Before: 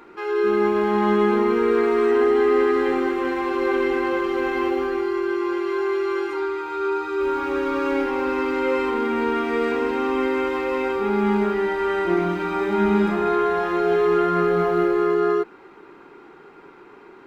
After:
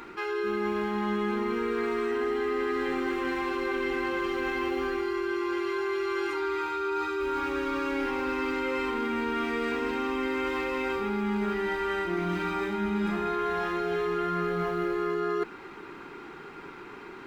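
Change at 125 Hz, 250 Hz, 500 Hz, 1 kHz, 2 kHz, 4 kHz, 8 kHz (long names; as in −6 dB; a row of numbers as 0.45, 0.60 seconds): −6.0 dB, −7.5 dB, −9.5 dB, −7.0 dB, −4.0 dB, −2.5 dB, can't be measured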